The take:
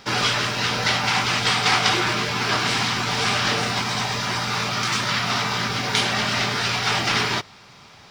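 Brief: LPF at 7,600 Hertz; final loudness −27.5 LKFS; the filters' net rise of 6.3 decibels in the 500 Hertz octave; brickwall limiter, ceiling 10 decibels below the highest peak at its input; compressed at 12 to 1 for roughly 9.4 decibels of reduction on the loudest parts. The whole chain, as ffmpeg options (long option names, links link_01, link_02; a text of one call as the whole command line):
ffmpeg -i in.wav -af "lowpass=7600,equalizer=frequency=500:width_type=o:gain=8,acompressor=threshold=-24dB:ratio=12,volume=1dB,alimiter=limit=-19dB:level=0:latency=1" out.wav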